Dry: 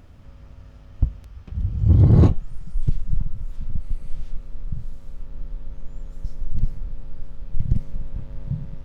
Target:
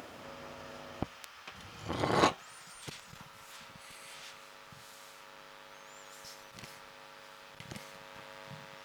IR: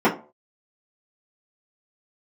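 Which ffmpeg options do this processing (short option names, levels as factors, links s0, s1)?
-af "asetnsamples=n=441:p=0,asendcmd='1.03 highpass f 1100',highpass=430,volume=3.98"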